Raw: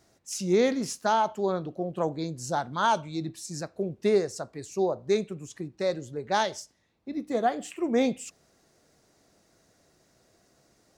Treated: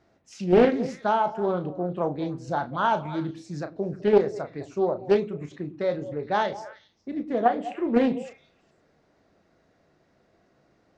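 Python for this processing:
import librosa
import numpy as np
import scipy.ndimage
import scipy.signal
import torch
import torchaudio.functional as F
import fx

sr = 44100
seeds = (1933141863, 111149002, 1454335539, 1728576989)

p1 = scipy.signal.sosfilt(scipy.signal.butter(2, 2700.0, 'lowpass', fs=sr, output='sos'), x)
p2 = fx.hum_notches(p1, sr, base_hz=60, count=2)
p3 = fx.level_steps(p2, sr, step_db=21)
p4 = p2 + (p3 * 10.0 ** (-1.0 / 20.0))
p5 = fx.doubler(p4, sr, ms=34.0, db=-10)
p6 = p5 + fx.echo_stepped(p5, sr, ms=103, hz=240.0, octaves=1.4, feedback_pct=70, wet_db=-10.0, dry=0)
y = fx.doppler_dist(p6, sr, depth_ms=0.43)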